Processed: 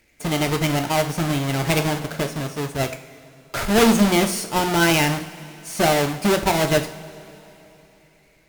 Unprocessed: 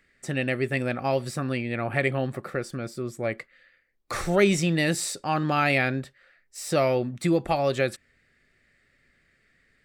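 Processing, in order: half-waves squared off; two-slope reverb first 0.54 s, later 4 s, from -18 dB, DRR 5.5 dB; varispeed +16%

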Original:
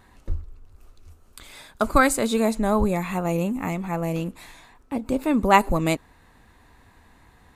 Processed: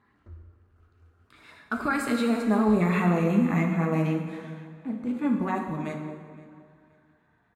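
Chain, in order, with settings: Doppler pass-by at 2.93, 19 m/s, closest 15 m; Bessel high-pass 170 Hz, order 2; tone controls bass +4 dB, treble -5 dB; notch 540 Hz, Q 13; harmonic-percussive split percussive -9 dB; EQ curve 860 Hz 0 dB, 1400 Hz +8 dB, 13000 Hz -5 dB; limiter -21.5 dBFS, peak gain reduction 13 dB; LFO notch sine 8 Hz 550–3200 Hz; feedback echo 0.519 s, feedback 27%, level -18.5 dB; plate-style reverb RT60 1.8 s, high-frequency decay 0.8×, DRR 2.5 dB; mismatched tape noise reduction decoder only; gain +4.5 dB

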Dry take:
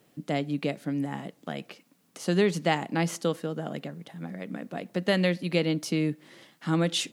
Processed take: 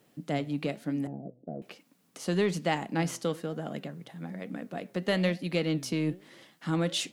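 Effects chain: 1.07–1.62 Chebyshev low-pass 690 Hz, order 5; in parallel at -8 dB: soft clip -26.5 dBFS, distortion -8 dB; on the sum: flange 1.1 Hz, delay 3.2 ms, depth 5.1 ms, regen +89%

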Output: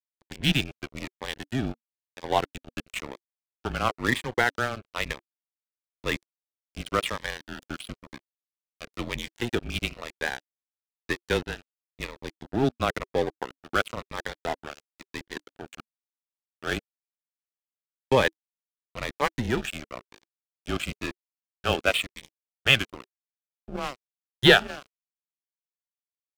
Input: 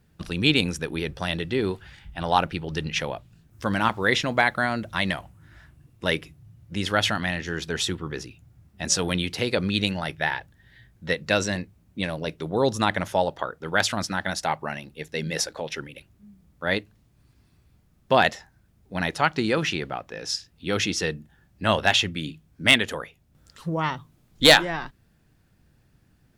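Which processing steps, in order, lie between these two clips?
mistuned SSB -130 Hz 190–3500 Hz; crossover distortion -28.5 dBFS; cascading phaser falling 1 Hz; gain +2 dB

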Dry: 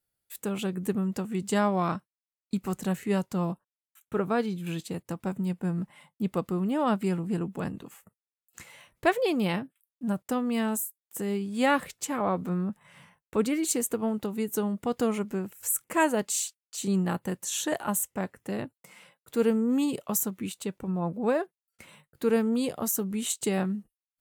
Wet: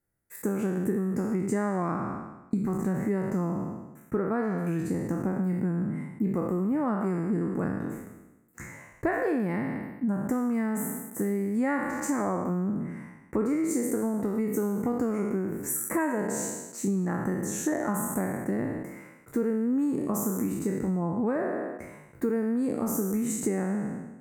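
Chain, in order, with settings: spectral trails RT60 1.00 s; EQ curve 180 Hz 0 dB, 290 Hz +4 dB, 510 Hz -3 dB, 1400 Hz -4 dB, 2000 Hz -2 dB, 3200 Hz -30 dB, 6100 Hz -11 dB; compressor 5:1, threshold -31 dBFS, peak gain reduction 13 dB; gain +6 dB

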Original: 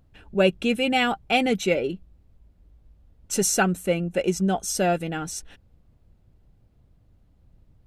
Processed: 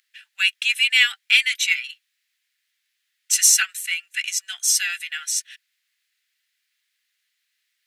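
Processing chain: elliptic high-pass 1800 Hz, stop band 80 dB; in parallel at -12 dB: hard clip -24 dBFS, distortion -11 dB; on the sum: gain +9 dB

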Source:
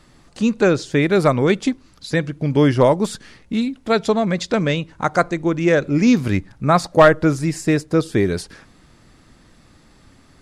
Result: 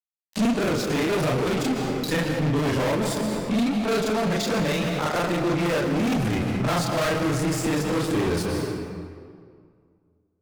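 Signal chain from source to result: short-time reversal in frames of 93 ms; fuzz box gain 28 dB, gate -37 dBFS; on a send at -6.5 dB: reverb RT60 2.1 s, pre-delay 0.111 s; on the sum: flange 1.6 Hz, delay 5.9 ms, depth 5.1 ms, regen -55%; limiter -20 dBFS, peak gain reduction 11 dB; gain +3 dB

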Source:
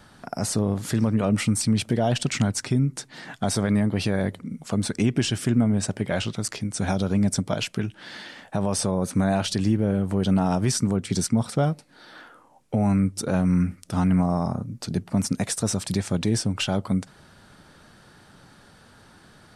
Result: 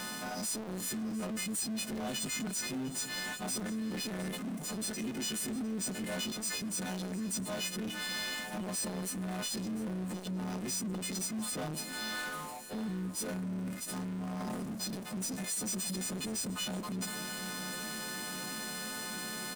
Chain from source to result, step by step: frequency quantiser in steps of 3 st; resonant low shelf 140 Hz -12 dB, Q 3; reverse; compressor 4:1, threshold -35 dBFS, peak gain reduction 19 dB; reverse; power-law curve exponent 0.35; echo 0.705 s -14.5 dB; core saturation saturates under 250 Hz; gain -8.5 dB

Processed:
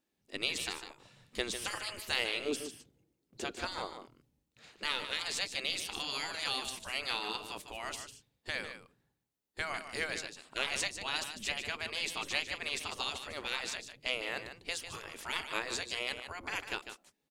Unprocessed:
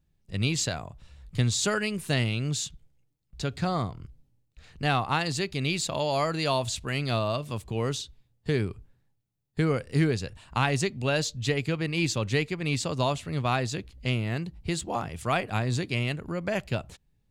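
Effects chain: spectral gate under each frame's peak -15 dB weak; 2.45–3.51 bell 350 Hz +13.5 dB 1.4 oct; echo 0.149 s -9.5 dB

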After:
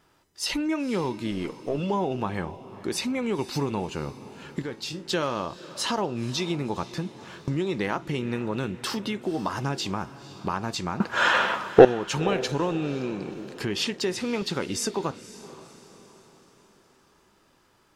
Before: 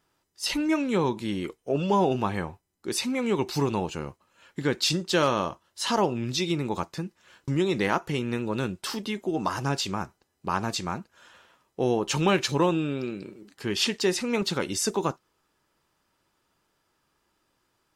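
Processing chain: 1.31–1.78 half-wave gain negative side -3 dB; high shelf 5200 Hz -5.5 dB; compressor 2.5:1, threshold -40 dBFS, peak gain reduction 14.5 dB; 4.62–5.08 resonator 110 Hz, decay 0.26 s, harmonics all, mix 70%; 11–11.85 overdrive pedal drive 35 dB, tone 1500 Hz, clips at -5 dBFS; on a send: diffused feedback echo 0.507 s, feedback 47%, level -16 dB; on the sum: maximiser +10.5 dB; gain -1 dB

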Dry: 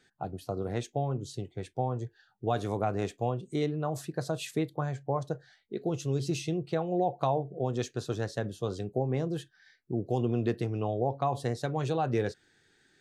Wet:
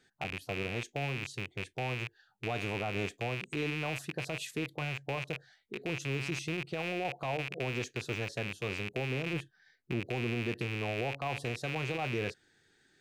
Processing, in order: rattling part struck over -43 dBFS, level -21 dBFS; 9.33–10 tilt shelf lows +4.5 dB; limiter -23 dBFS, peak gain reduction 10 dB; gain -2 dB

